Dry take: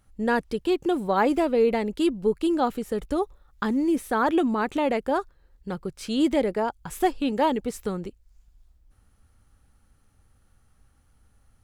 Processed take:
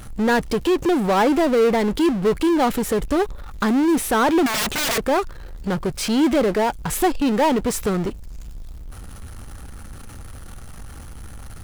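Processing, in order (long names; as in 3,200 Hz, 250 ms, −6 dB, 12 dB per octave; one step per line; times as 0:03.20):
0:04.46–0:04.98: wrap-around overflow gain 28.5 dB
power curve on the samples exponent 0.5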